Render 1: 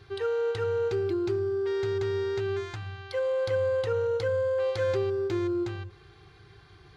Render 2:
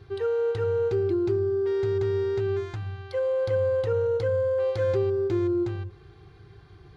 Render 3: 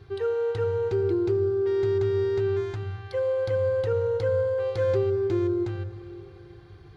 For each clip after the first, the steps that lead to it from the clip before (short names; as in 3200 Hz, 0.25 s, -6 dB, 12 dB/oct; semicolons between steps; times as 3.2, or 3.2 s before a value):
tilt shelf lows +5 dB, about 840 Hz
reverb RT60 2.9 s, pre-delay 71 ms, DRR 11.5 dB